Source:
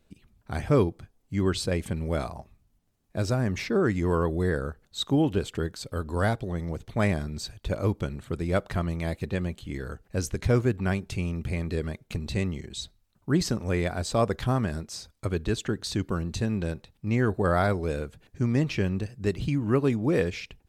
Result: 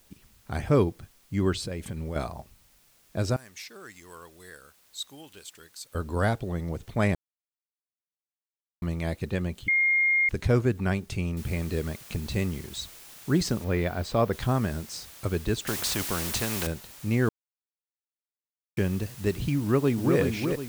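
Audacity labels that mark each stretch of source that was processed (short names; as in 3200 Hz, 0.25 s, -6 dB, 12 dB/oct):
1.540000	2.160000	compressor 5:1, threshold -30 dBFS
3.360000	5.950000	pre-emphasis coefficient 0.97
7.150000	8.820000	mute
9.680000	10.290000	bleep 2130 Hz -19.5 dBFS
11.370000	11.370000	noise floor step -62 dB -48 dB
13.640000	14.330000	bell 8000 Hz -10 dB 1.2 oct
15.670000	16.670000	spectral compressor 2:1
17.290000	18.770000	mute
19.600000	20.180000	echo throw 0.37 s, feedback 40%, level -4.5 dB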